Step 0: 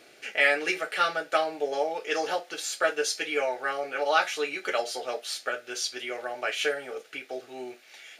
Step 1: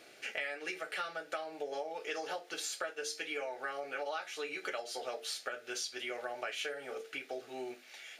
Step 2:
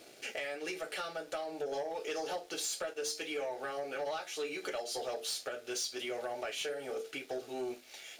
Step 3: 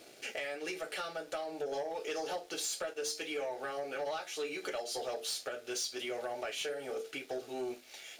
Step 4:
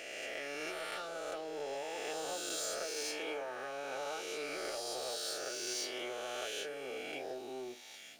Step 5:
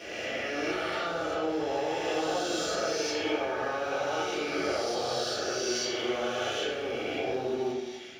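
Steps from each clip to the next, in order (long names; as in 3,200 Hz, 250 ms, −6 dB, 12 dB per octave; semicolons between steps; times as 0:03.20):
mains-hum notches 50/100/150/200/250/300/350/400/450 Hz; downward compressor 10 to 1, threshold −33 dBFS, peak gain reduction 16.5 dB; level −2.5 dB
parametric band 1,700 Hz −9 dB 1.7 octaves; leveller curve on the samples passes 2; level −1.5 dB
no processing that can be heard
peak hold with a rise ahead of every peak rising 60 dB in 2.52 s; level −7 dB
in parallel at −11 dB: bit reduction 7 bits; on the sum: convolution reverb RT60 1.1 s, pre-delay 3 ms, DRR −11.5 dB; level −7.5 dB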